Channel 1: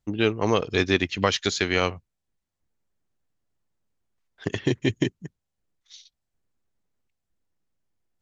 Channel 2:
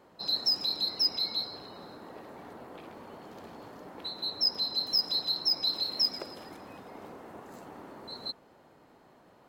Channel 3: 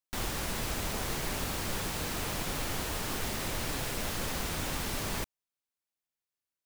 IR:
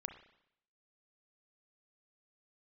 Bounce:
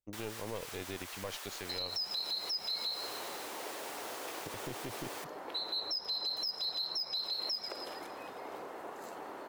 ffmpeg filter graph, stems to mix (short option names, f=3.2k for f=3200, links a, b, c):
-filter_complex "[0:a]equalizer=f=550:w=2.1:g=8.5,aeval=exprs='(tanh(4.47*val(0)+0.7)-tanh(0.7))/4.47':c=same,volume=-15dB[a];[1:a]adelay=1500,volume=2.5dB,asplit=2[b][c];[c]volume=-11.5dB[d];[2:a]highpass=770,volume=-8.5dB[e];[b][e]amix=inputs=2:normalize=0,highpass=f=290:w=0.5412,highpass=f=290:w=1.3066,acompressor=threshold=-32dB:ratio=6,volume=0dB[f];[3:a]atrim=start_sample=2205[g];[d][g]afir=irnorm=-1:irlink=0[h];[a][f][h]amix=inputs=3:normalize=0,alimiter=level_in=4.5dB:limit=-24dB:level=0:latency=1:release=51,volume=-4.5dB"